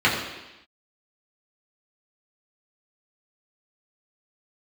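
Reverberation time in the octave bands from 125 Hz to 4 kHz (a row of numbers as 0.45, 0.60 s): 0.85, 1.0, 0.95, 1.0, 1.1, 1.1 s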